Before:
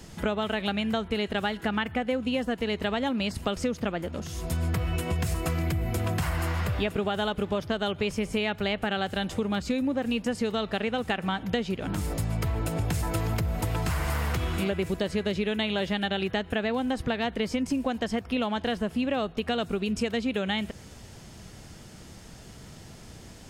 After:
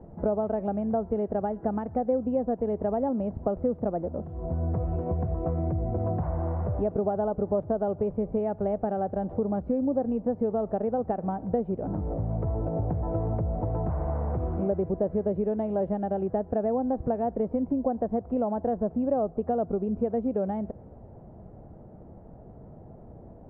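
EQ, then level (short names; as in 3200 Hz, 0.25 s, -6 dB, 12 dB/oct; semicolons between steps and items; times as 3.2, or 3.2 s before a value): ladder low-pass 820 Hz, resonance 40%; +7.5 dB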